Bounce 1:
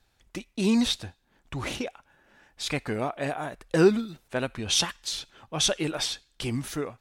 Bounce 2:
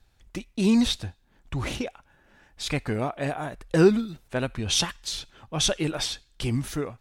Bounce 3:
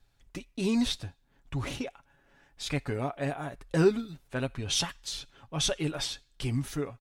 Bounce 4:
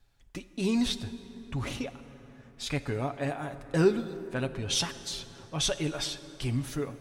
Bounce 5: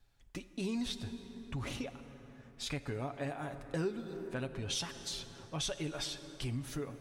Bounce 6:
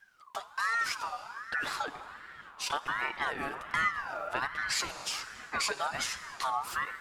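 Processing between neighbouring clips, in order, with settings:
bass shelf 140 Hz +9.5 dB
comb 7.2 ms, depth 45%; trim -5.5 dB
plate-style reverb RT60 4.4 s, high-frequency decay 0.45×, DRR 12 dB
compression 2.5:1, threshold -33 dBFS, peak gain reduction 11 dB; trim -3 dB
ring modulator with a swept carrier 1.3 kHz, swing 25%, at 1.3 Hz; trim +8 dB

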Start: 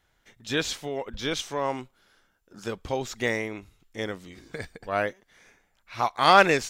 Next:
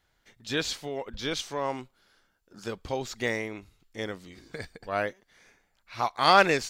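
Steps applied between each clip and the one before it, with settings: peaking EQ 4.5 kHz +5.5 dB 0.25 oct; trim -2.5 dB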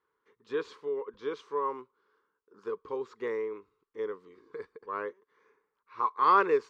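two resonant band-passes 680 Hz, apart 1.3 oct; trim +5.5 dB

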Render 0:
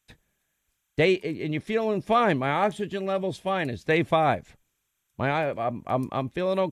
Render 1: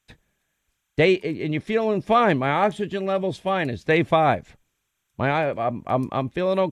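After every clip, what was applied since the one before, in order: treble shelf 8.7 kHz -8.5 dB; trim +3.5 dB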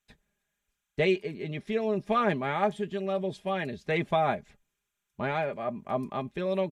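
comb 4.9 ms, depth 56%; trim -9 dB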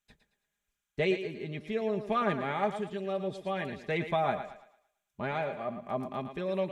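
thinning echo 112 ms, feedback 37%, high-pass 290 Hz, level -9 dB; trim -3.5 dB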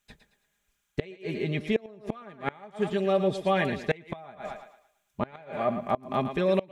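inverted gate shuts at -22 dBFS, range -26 dB; trim +9 dB

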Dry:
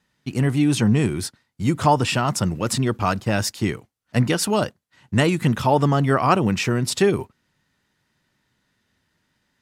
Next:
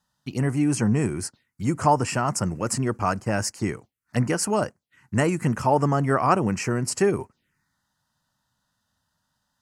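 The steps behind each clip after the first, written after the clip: bass shelf 470 Hz -4.5 dB; touch-sensitive phaser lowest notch 380 Hz, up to 3.6 kHz, full sweep at -25.5 dBFS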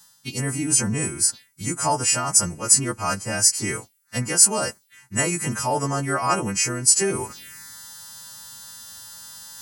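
partials quantised in pitch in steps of 2 st; treble shelf 3.2 kHz +9 dB; reverse; upward compressor, threshold -16 dBFS; reverse; trim -4 dB

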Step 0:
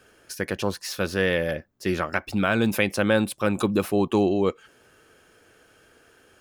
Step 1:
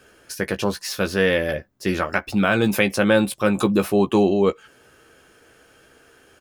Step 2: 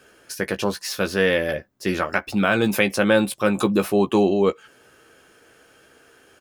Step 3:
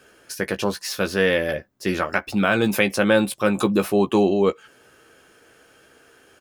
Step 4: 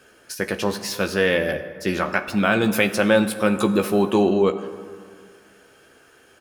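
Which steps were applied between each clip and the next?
doubling 15 ms -8 dB; trim +3 dB
bass shelf 93 Hz -8 dB
no audible change
plate-style reverb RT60 2.1 s, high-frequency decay 0.5×, pre-delay 0 ms, DRR 10 dB

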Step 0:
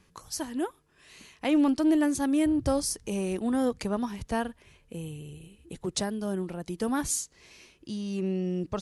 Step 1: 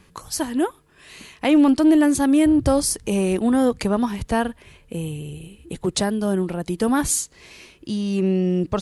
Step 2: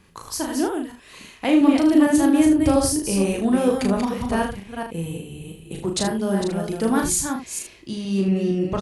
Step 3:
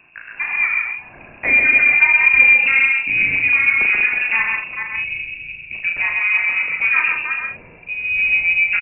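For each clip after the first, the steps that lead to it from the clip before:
peaking EQ 5.8 kHz -4.5 dB 0.48 oct; in parallel at -3 dB: peak limiter -21 dBFS, peak gain reduction 7 dB; on the sum: trim +5 dB
chunks repeated in reverse 230 ms, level -5 dB; on a send: early reflections 36 ms -4 dB, 77 ms -9.5 dB; on the sum: trim -3 dB
saturation -8.5 dBFS, distortion -21 dB; delay 133 ms -3.5 dB; frequency inversion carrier 2.7 kHz; trim +3.5 dB

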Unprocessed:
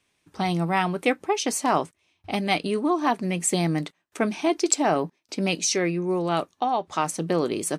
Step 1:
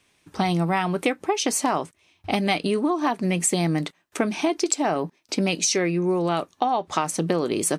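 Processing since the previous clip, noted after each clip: compression, threshold -26 dBFS, peak gain reduction 10.5 dB; trim +7 dB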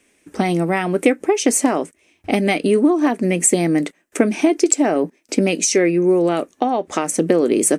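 graphic EQ 125/250/500/1000/2000/4000/8000 Hz -11/+8/+6/-7/+5/-8/+6 dB; trim +3 dB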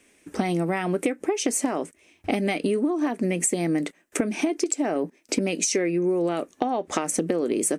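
compression, threshold -21 dBFS, peak gain reduction 12 dB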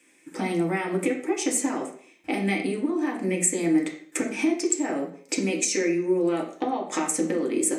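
reverberation RT60 0.50 s, pre-delay 3 ms, DRR -1 dB; trim -2.5 dB

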